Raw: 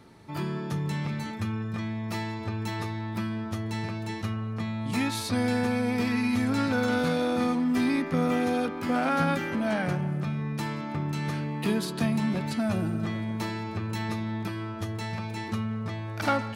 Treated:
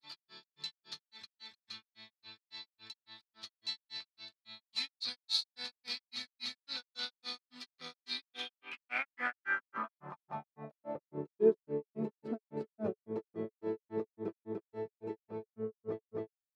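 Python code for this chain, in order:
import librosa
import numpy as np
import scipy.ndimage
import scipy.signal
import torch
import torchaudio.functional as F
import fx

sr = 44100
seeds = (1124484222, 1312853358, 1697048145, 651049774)

y = fx.granulator(x, sr, seeds[0], grain_ms=165.0, per_s=3.6, spray_ms=333.0, spread_st=0)
y = fx.filter_sweep_bandpass(y, sr, from_hz=4200.0, to_hz=430.0, start_s=8.11, end_s=11.24, q=6.9)
y = y * 10.0 ** (12.0 / 20.0)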